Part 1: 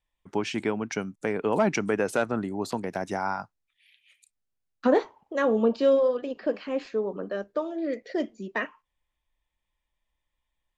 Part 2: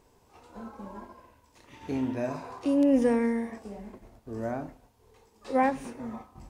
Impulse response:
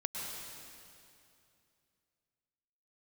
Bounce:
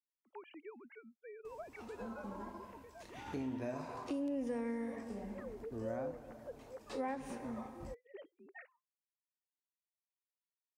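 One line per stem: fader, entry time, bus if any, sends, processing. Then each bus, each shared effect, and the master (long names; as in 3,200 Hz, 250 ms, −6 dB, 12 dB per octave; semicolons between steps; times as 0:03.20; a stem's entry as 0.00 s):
−18.5 dB, 0.00 s, no send, three sine waves on the formant tracks
−1.5 dB, 1.45 s, send −14.5 dB, downward compressor 2.5 to 1, threshold −26 dBFS, peak gain reduction 6 dB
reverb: on, RT60 2.6 s, pre-delay 98 ms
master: downward compressor 2 to 1, threshold −44 dBFS, peak gain reduction 11 dB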